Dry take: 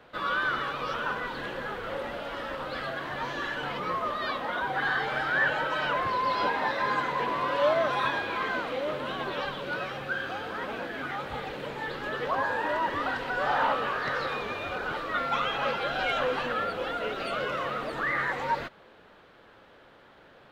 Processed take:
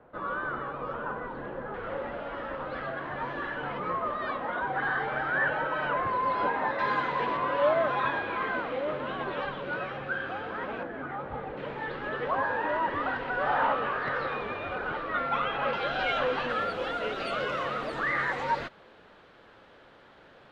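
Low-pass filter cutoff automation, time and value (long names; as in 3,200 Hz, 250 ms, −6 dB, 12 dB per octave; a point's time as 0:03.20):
1,100 Hz
from 0:01.74 1,900 Hz
from 0:06.79 3,800 Hz
from 0:07.37 2,400 Hz
from 0:10.83 1,300 Hz
from 0:11.57 2,500 Hz
from 0:15.73 4,700 Hz
from 0:16.49 8,700 Hz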